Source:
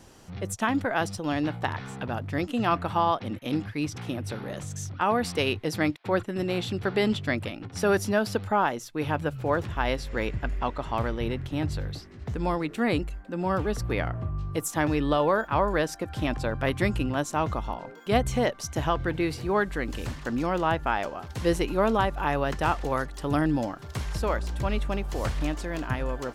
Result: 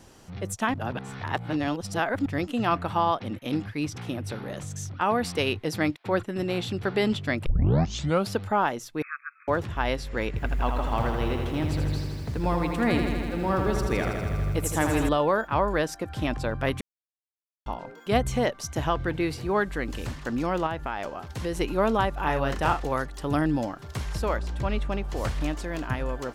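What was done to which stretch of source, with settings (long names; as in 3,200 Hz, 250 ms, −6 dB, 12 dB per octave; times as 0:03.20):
0:00.74–0:02.26: reverse
0:07.46: tape start 0.84 s
0:09.02–0:09.48: linear-phase brick-wall band-pass 1,100–2,600 Hz
0:10.28–0:15.09: feedback echo at a low word length 81 ms, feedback 80%, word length 9 bits, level −6 dB
0:16.81–0:17.66: silence
0:20.66–0:21.60: downward compressor 3 to 1, threshold −27 dBFS
0:22.21–0:22.80: double-tracking delay 37 ms −6 dB
0:24.38–0:25.17: high-shelf EQ 8,300 Hz −9.5 dB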